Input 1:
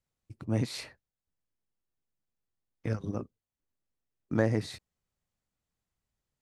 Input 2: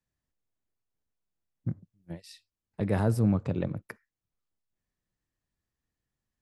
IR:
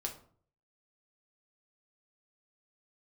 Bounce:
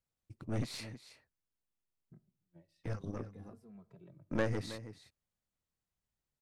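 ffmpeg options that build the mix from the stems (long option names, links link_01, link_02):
-filter_complex "[0:a]volume=-5dB,asplit=2[link_01][link_02];[link_02]volume=-13.5dB[link_03];[1:a]highshelf=frequency=2800:gain=-10,acrossover=split=310|1400|4400[link_04][link_05][link_06][link_07];[link_04]acompressor=threshold=-37dB:ratio=4[link_08];[link_05]acompressor=threshold=-41dB:ratio=4[link_09];[link_06]acompressor=threshold=-57dB:ratio=4[link_10];[link_07]acompressor=threshold=-57dB:ratio=4[link_11];[link_08][link_09][link_10][link_11]amix=inputs=4:normalize=0,asplit=2[link_12][link_13];[link_13]adelay=2.6,afreqshift=-0.58[link_14];[link_12][link_14]amix=inputs=2:normalize=1,adelay=450,volume=-18.5dB,asplit=2[link_15][link_16];[link_16]volume=-11dB[link_17];[2:a]atrim=start_sample=2205[link_18];[link_17][link_18]afir=irnorm=-1:irlink=0[link_19];[link_03]aecho=0:1:320:1[link_20];[link_01][link_15][link_19][link_20]amix=inputs=4:normalize=0,aeval=exprs='0.15*(cos(1*acos(clip(val(0)/0.15,-1,1)))-cos(1*PI/2))+0.0237*(cos(4*acos(clip(val(0)/0.15,-1,1)))-cos(4*PI/2))+0.00841*(cos(8*acos(clip(val(0)/0.15,-1,1)))-cos(8*PI/2))':channel_layout=same"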